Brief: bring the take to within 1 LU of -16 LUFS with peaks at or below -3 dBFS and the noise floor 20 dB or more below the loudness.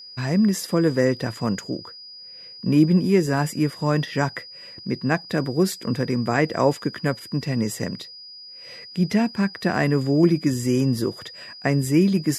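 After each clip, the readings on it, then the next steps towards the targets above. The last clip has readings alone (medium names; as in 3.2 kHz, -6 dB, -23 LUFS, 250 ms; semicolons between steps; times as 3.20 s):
steady tone 4.9 kHz; tone level -39 dBFS; loudness -22.5 LUFS; peak level -5.0 dBFS; loudness target -16.0 LUFS
-> band-stop 4.9 kHz, Q 30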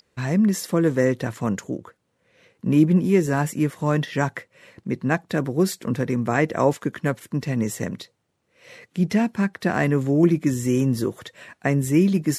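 steady tone not found; loudness -22.5 LUFS; peak level -5.0 dBFS; loudness target -16.0 LUFS
-> trim +6.5 dB; peak limiter -3 dBFS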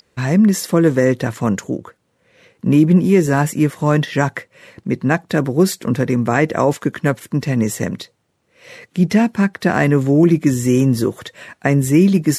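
loudness -16.5 LUFS; peak level -3.0 dBFS; noise floor -65 dBFS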